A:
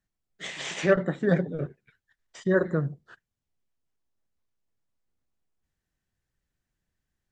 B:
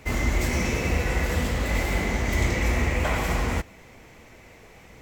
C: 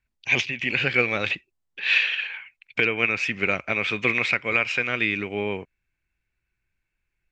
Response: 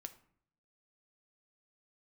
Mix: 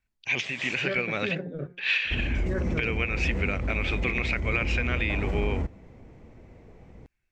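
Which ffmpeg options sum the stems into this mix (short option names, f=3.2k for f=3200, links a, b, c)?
-filter_complex "[0:a]bandreject=f=177.3:t=h:w=4,bandreject=f=354.6:t=h:w=4,bandreject=f=531.9:t=h:w=4,bandreject=f=709.2:t=h:w=4,bandreject=f=886.5:t=h:w=4,bandreject=f=1.0638k:t=h:w=4,bandreject=f=1.2411k:t=h:w=4,bandreject=f=1.4184k:t=h:w=4,bandreject=f=1.5957k:t=h:w=4,bandreject=f=1.773k:t=h:w=4,bandreject=f=1.9503k:t=h:w=4,bandreject=f=2.1276k:t=h:w=4,bandreject=f=2.3049k:t=h:w=4,bandreject=f=2.4822k:t=h:w=4,volume=-3.5dB[a];[1:a]tiltshelf=f=820:g=10,adelay=2050,volume=-6.5dB[b];[2:a]volume=-2.5dB[c];[a][b]amix=inputs=2:normalize=0,lowpass=6.8k,alimiter=limit=-20dB:level=0:latency=1:release=47,volume=0dB[d];[c][d]amix=inputs=2:normalize=0,alimiter=limit=-15dB:level=0:latency=1:release=223"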